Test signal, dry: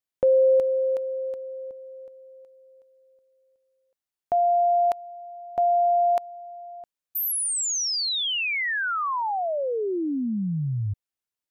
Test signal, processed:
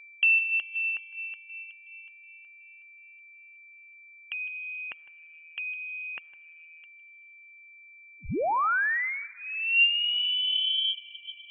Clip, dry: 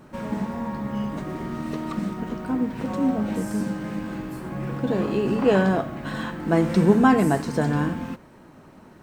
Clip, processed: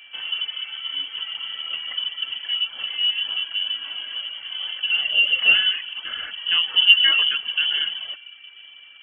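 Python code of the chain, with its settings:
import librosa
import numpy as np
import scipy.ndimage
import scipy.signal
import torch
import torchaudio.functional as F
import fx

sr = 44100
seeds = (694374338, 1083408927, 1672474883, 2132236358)

y = fx.peak_eq(x, sr, hz=430.0, db=11.5, octaves=0.26)
y = fx.fixed_phaser(y, sr, hz=1900.0, stages=4)
y = fx.echo_feedback(y, sr, ms=157, feedback_pct=18, wet_db=-15.5)
y = y + 10.0 ** (-48.0 / 20.0) * np.sin(2.0 * np.pi * 860.0 * np.arange(len(y)) / sr)
y = fx.rev_freeverb(y, sr, rt60_s=2.5, hf_ratio=0.35, predelay_ms=35, drr_db=11.5)
y = fx.freq_invert(y, sr, carrier_hz=3200)
y = fx.dereverb_blind(y, sr, rt60_s=0.82)
y = fx.low_shelf(y, sr, hz=69.0, db=-8.0)
y = y * librosa.db_to_amplitude(1.5)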